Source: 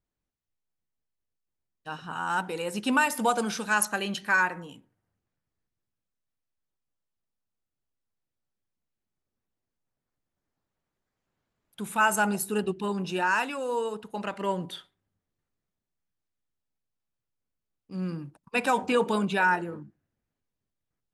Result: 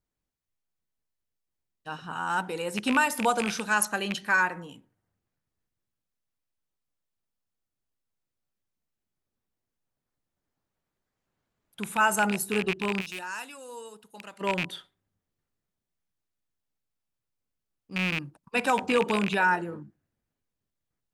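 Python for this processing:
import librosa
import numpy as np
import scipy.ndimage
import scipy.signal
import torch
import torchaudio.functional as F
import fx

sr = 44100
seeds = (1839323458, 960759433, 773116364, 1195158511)

y = fx.rattle_buzz(x, sr, strikes_db=-35.0, level_db=-17.0)
y = fx.pre_emphasis(y, sr, coefficient=0.8, at=(13.0, 14.4), fade=0.02)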